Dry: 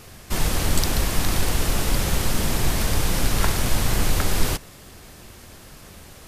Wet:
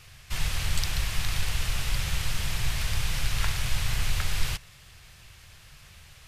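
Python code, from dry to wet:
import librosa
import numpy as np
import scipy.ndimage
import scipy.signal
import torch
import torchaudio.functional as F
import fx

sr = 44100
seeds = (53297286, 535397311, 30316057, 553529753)

y = fx.curve_eq(x, sr, hz=(140.0, 240.0, 2600.0, 13000.0), db=(0, -18, 4, -6))
y = F.gain(torch.from_numpy(y), -5.5).numpy()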